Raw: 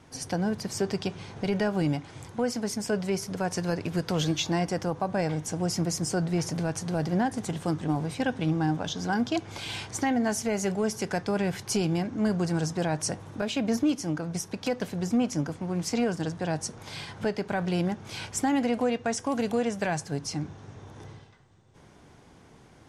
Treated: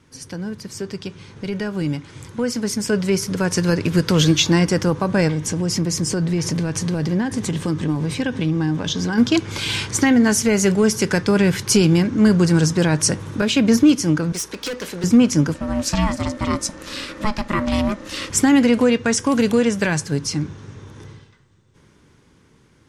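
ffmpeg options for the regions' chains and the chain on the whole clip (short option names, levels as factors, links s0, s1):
-filter_complex "[0:a]asettb=1/sr,asplit=3[s0][s1][s2];[s0]atrim=end=5.284[s3];[s1]atrim=start=5.28:end=9.18,asetpts=PTS-STARTPTS,afade=t=in:d=0.004:c=qsin,afade=t=out:st=3.896:d=0.004:c=qsin,highshelf=f=9300:g=-6.5,bandreject=f=1400:w=11,acompressor=threshold=0.0282:ratio=2.5:attack=3.2:release=140:knee=1:detection=peak[s4];[s2]atrim=start=9.176[s5];[s3][s4]acrossfade=d=0.004:c1=hsin:c2=qsin[s6];[s6][s5]acrossfade=d=0.004:c1=qsin:c2=hsin,asettb=1/sr,asplit=3[s7][s8][s9];[s7]atrim=end=14.324[s10];[s8]atrim=start=14.32:end=15.04,asetpts=PTS-STARTPTS,afade=t=in:d=0.004:c=qsin,afade=t=out:st=0.716:d=0.004:c=qsin,highpass=370,volume=50.1,asoftclip=hard,volume=0.02,aeval=exprs='val(0)+0.000631*(sin(2*PI*60*n/s)+sin(2*PI*2*60*n/s)/2+sin(2*PI*3*60*n/s)/3+sin(2*PI*4*60*n/s)/4+sin(2*PI*5*60*n/s)/5)':c=same[s11];[s9]atrim=start=15.036[s12];[s10][s11]acrossfade=d=0.004:c1=hsin:c2=qsin[s13];[s13][s12]acrossfade=d=0.004:c1=qsin:c2=hsin,asettb=1/sr,asplit=3[s14][s15][s16];[s14]atrim=end=15.544[s17];[s15]atrim=start=15.54:end=18.3,asetpts=PTS-STARTPTS,afade=t=in:d=0.004:c=qsin,afade=t=out:st=2.756:d=0.004:c=qsin,aeval=exprs='val(0)*sin(2*PI*420*n/s)':c=same,aeval=exprs='val(0)+0.000794*sin(2*PI*1800*n/s)':c=same[s18];[s16]atrim=start=18.296[s19];[s17][s18]acrossfade=d=0.004:c1=hsin:c2=qsin[s20];[s20][s19]acrossfade=d=0.004:c1=qsin:c2=hsin,equalizer=f=720:t=o:w=0.48:g=-14,dynaudnorm=f=310:g=17:m=4.47"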